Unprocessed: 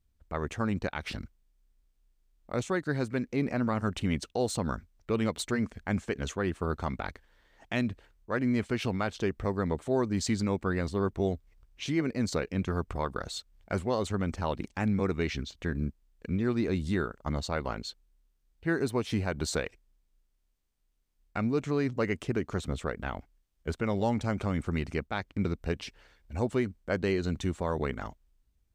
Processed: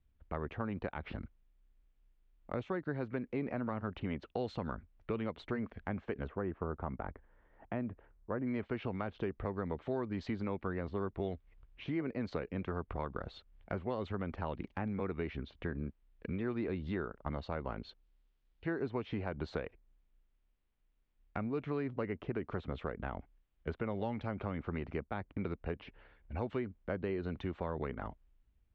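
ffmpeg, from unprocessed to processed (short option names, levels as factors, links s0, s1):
-filter_complex "[0:a]asplit=3[s0][s1][s2];[s0]afade=t=out:st=6.26:d=0.02[s3];[s1]lowpass=1300,afade=t=in:st=6.26:d=0.02,afade=t=out:st=8.45:d=0.02[s4];[s2]afade=t=in:st=8.45:d=0.02[s5];[s3][s4][s5]amix=inputs=3:normalize=0,asettb=1/sr,asplit=3[s6][s7][s8];[s6]atrim=end=17.894[s9];[s7]atrim=start=17.89:end=18.83,asetpts=PTS-STARTPTS,afade=t=in:d=0.004:c=qsin,afade=t=out:st=0.936:d=0.004:c=qsin,bass=f=250:g=-3,treble=f=4000:g=12[s10];[s8]atrim=start=18.826[s11];[s9][s10]acrossfade=d=0.004:c1=hsin:c2=qsin[s12];[s12][s11]acrossfade=d=0.004:c1=qsin:c2=hsin,asettb=1/sr,asplit=3[s13][s14][s15];[s13]atrim=end=25.554[s16];[s14]atrim=start=25.55:end=26.37,asetpts=PTS-STARTPTS,afade=t=in:d=0.004:c=qsin,afade=t=out:st=0.816:d=0.004:c=qsin,lowpass=f=2200:p=1[s17];[s15]atrim=start=26.366[s18];[s16][s17]acrossfade=d=0.004:c1=hsin:c2=qsin[s19];[s19][s18]acrossfade=d=0.004:c1=qsin:c2=hsin,lowpass=f=3200:w=0.5412,lowpass=f=3200:w=1.3066,acrossover=split=380|1300[s20][s21][s22];[s20]acompressor=threshold=0.0112:ratio=4[s23];[s21]acompressor=threshold=0.0112:ratio=4[s24];[s22]acompressor=threshold=0.00251:ratio=4[s25];[s23][s24][s25]amix=inputs=3:normalize=0"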